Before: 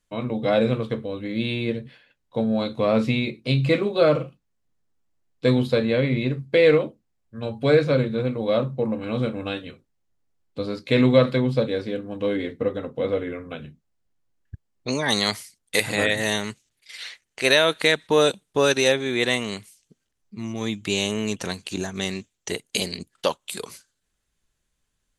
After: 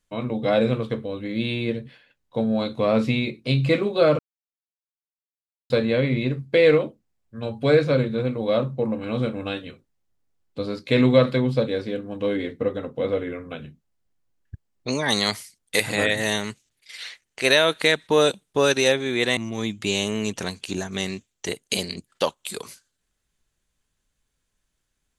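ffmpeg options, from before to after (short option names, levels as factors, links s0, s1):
-filter_complex "[0:a]asplit=4[s0][s1][s2][s3];[s0]atrim=end=4.19,asetpts=PTS-STARTPTS,afade=t=out:st=4.186:d=0.004:c=hsin[s4];[s1]atrim=start=4.19:end=5.7,asetpts=PTS-STARTPTS,volume=0[s5];[s2]atrim=start=5.7:end=19.372,asetpts=PTS-STARTPTS,afade=t=in:d=0.004:c=hsin[s6];[s3]atrim=start=20.398[s7];[s4][s5][s6]concat=n=3:v=0:a=1[s8];[s8][s7]acrossfade=d=0.004:c1=hsin:c2=hsin"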